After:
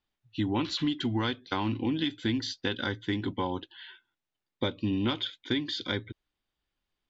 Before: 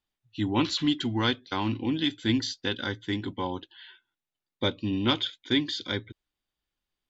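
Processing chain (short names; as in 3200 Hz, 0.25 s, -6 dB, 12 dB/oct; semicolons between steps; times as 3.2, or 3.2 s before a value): compressor, threshold -28 dBFS, peak gain reduction 9 dB; air absorption 85 m; gain +3 dB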